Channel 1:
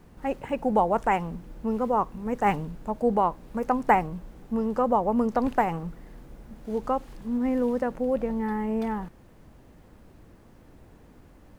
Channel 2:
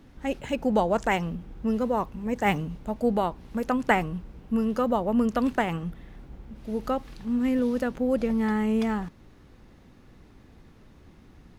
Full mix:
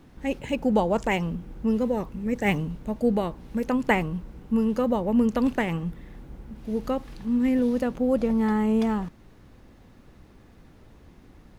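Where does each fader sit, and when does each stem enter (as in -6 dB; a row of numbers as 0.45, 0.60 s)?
-5.0, -0.5 dB; 0.00, 0.00 s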